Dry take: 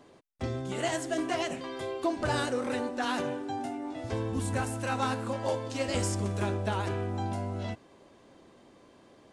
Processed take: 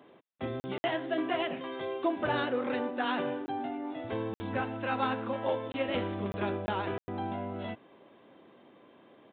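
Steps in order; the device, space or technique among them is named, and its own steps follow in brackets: call with lost packets (HPF 160 Hz 12 dB/oct; downsampling 8000 Hz; packet loss bursts)

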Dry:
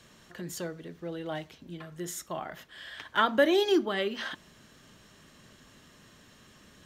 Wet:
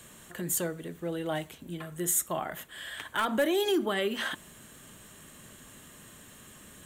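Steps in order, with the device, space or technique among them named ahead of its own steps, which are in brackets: clipper into limiter (hard clip -16.5 dBFS, distortion -19 dB; limiter -23.5 dBFS, peak gain reduction 7 dB); EQ curve 3400 Hz 0 dB, 5300 Hz -7 dB, 8000 Hz +12 dB; gain +3.5 dB

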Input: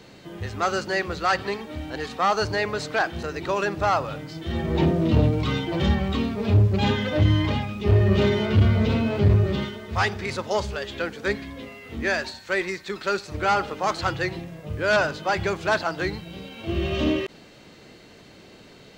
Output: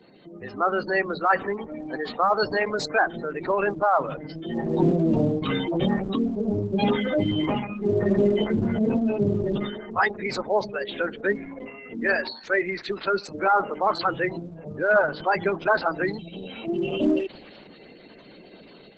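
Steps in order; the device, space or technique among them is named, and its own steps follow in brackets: noise-suppressed video call (HPF 160 Hz 24 dB/oct; spectral gate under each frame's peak -15 dB strong; AGC gain up to 6 dB; gain -3.5 dB; Opus 12 kbps 48000 Hz)

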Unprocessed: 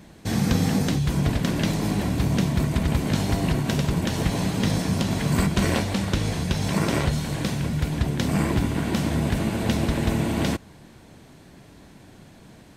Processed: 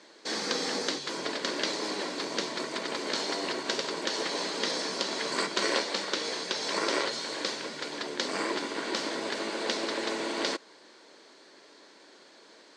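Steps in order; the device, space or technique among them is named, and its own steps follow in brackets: phone speaker on a table (speaker cabinet 380–7300 Hz, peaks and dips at 730 Hz -8 dB, 2600 Hz -4 dB, 4500 Hz +7 dB)

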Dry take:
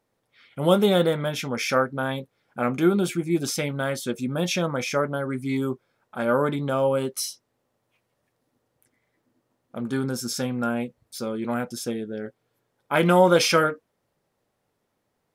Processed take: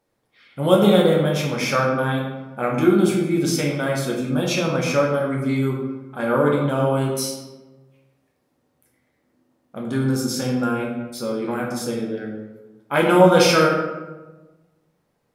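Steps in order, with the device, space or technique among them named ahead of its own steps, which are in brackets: bathroom (reverb RT60 1.2 s, pre-delay 9 ms, DRR -1 dB)

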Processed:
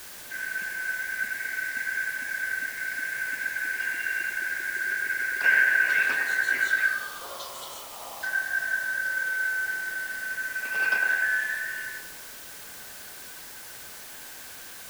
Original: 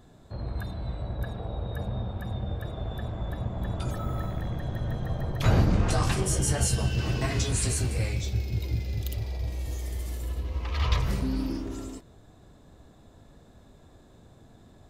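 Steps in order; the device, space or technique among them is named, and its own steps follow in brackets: 6.93–8.23 steep high-pass 2000 Hz 36 dB/oct; split-band scrambled radio (four-band scrambler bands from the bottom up 2143; BPF 340–3200 Hz; white noise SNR 13 dB); narrowing echo 0.102 s, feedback 71%, band-pass 630 Hz, level -3.5 dB

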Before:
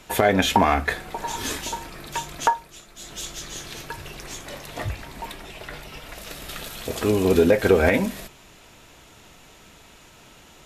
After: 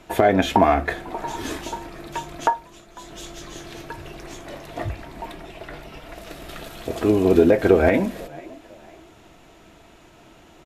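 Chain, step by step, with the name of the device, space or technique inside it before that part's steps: frequency-shifting echo 0.499 s, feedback 36%, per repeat +67 Hz, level -23 dB; inside a helmet (high shelf 3100 Hz -9 dB; small resonant body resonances 330/670 Hz, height 8 dB)

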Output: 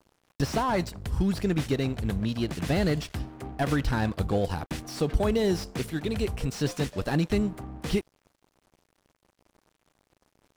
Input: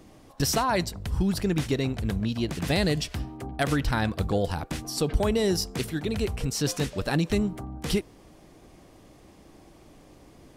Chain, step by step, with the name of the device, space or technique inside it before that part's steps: early transistor amplifier (crossover distortion -47 dBFS; slew limiter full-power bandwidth 72 Hz)

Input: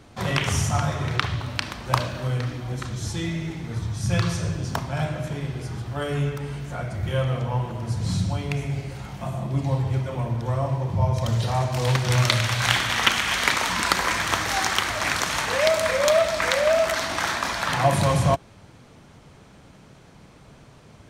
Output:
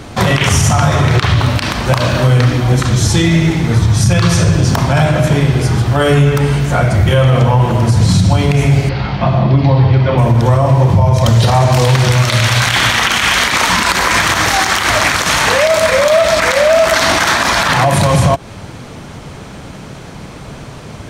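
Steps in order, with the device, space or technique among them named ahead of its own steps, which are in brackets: 8.89–10.18 Chebyshev low-pass 4700 Hz, order 4; loud club master (compressor 3:1, threshold -23 dBFS, peak gain reduction 8 dB; hard clip -9 dBFS, distortion -35 dB; maximiser +20 dB); gain -1 dB

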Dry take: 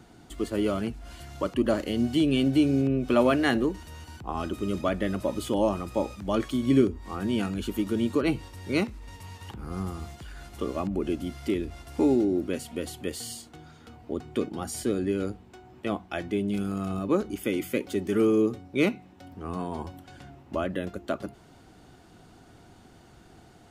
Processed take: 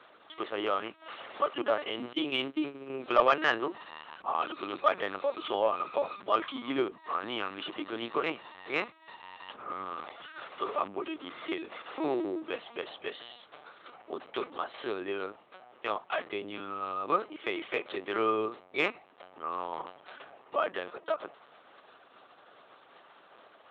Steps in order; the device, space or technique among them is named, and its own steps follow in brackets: talking toy (LPC vocoder at 8 kHz pitch kept; HPF 640 Hz 12 dB/oct; bell 1200 Hz +7 dB 0.24 oct; soft clip -13.5 dBFS, distortion -23 dB); 2.13–2.9 gate -37 dBFS, range -18 dB; gain +3 dB

